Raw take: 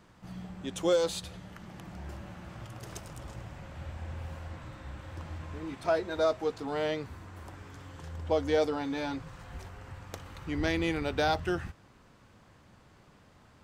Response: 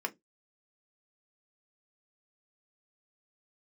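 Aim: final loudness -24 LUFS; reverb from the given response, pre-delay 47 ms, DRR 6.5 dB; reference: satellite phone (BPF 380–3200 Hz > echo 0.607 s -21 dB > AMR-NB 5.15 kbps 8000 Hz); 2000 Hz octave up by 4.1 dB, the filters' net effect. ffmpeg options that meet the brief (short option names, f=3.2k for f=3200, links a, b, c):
-filter_complex "[0:a]equalizer=f=2k:t=o:g=6,asplit=2[a][b];[1:a]atrim=start_sample=2205,adelay=47[c];[b][c]afir=irnorm=-1:irlink=0,volume=-10.5dB[d];[a][d]amix=inputs=2:normalize=0,highpass=380,lowpass=3.2k,aecho=1:1:607:0.0891,volume=8dB" -ar 8000 -c:a libopencore_amrnb -b:a 5150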